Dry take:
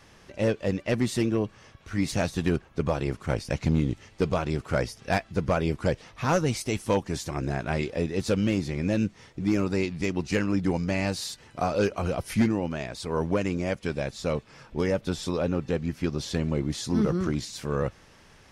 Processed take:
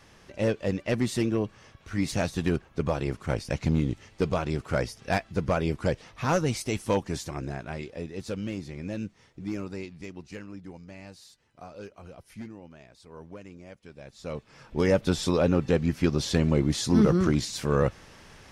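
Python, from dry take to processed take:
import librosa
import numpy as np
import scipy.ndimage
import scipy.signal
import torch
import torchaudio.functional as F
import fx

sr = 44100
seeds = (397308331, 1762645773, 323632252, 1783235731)

y = fx.gain(x, sr, db=fx.line((7.13, -1.0), (7.77, -8.5), (9.53, -8.5), (10.73, -18.0), (13.93, -18.0), (14.31, -7.5), (14.93, 4.0)))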